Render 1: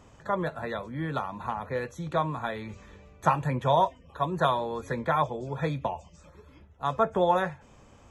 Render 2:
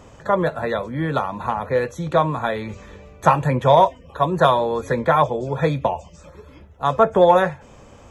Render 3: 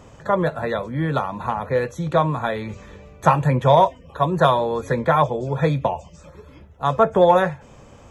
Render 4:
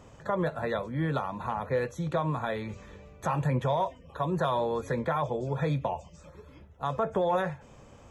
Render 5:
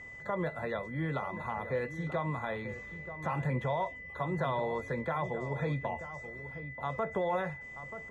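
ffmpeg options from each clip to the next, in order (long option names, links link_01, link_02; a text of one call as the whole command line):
ffmpeg -i in.wav -af "equalizer=frequency=520:width=2.1:gain=4,acontrast=45,volume=2.5dB" out.wav
ffmpeg -i in.wav -af "equalizer=frequency=140:width=1.9:gain=3.5,volume=-1dB" out.wav
ffmpeg -i in.wav -af "alimiter=limit=-12.5dB:level=0:latency=1:release=65,volume=-6.5dB" out.wav
ffmpeg -i in.wav -filter_complex "[0:a]acrossover=split=3900[link_01][link_02];[link_02]acompressor=threshold=-58dB:ratio=4:attack=1:release=60[link_03];[link_01][link_03]amix=inputs=2:normalize=0,aeval=exprs='val(0)+0.01*sin(2*PI*2000*n/s)':channel_layout=same,asplit=2[link_04][link_05];[link_05]adelay=932.9,volume=-11dB,highshelf=frequency=4000:gain=-21[link_06];[link_04][link_06]amix=inputs=2:normalize=0,volume=-5dB" out.wav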